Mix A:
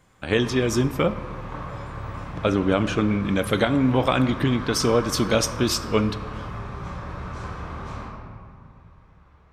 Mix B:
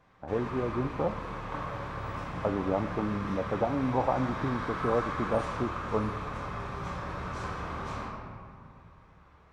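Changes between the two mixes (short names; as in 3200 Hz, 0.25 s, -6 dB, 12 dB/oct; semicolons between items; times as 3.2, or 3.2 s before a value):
speech: add ladder low-pass 960 Hz, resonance 60%; background: add low shelf 170 Hz -7 dB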